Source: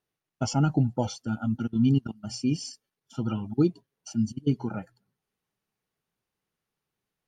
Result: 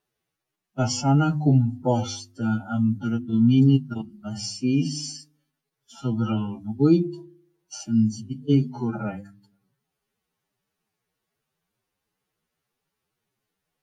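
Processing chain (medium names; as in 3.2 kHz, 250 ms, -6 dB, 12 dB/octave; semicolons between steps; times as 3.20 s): hum notches 50/100/150/200/250/300/350 Hz; time stretch by phase-locked vocoder 1.9×; trim +5 dB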